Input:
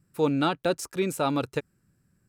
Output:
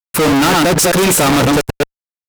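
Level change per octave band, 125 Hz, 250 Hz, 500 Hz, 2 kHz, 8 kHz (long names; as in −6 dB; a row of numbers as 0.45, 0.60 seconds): +16.0, +14.5, +13.0, +19.5, +24.5 decibels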